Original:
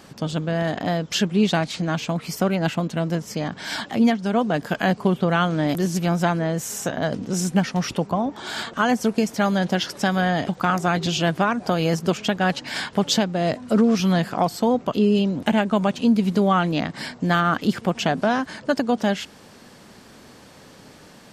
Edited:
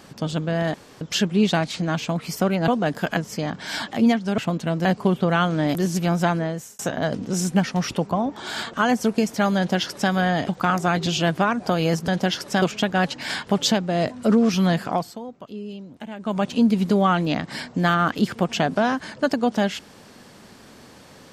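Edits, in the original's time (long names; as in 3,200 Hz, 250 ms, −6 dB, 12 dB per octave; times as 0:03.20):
0:00.74–0:01.01: fill with room tone
0:02.68–0:03.15: swap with 0:04.36–0:04.85
0:06.37–0:06.79: fade out
0:09.57–0:10.11: duplicate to 0:12.08
0:14.32–0:15.94: duck −16 dB, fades 0.33 s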